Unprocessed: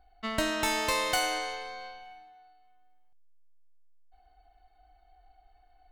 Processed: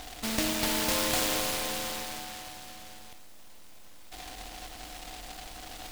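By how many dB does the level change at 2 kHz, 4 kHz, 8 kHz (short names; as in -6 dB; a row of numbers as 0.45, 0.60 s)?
-2.0, +3.0, +6.0 dB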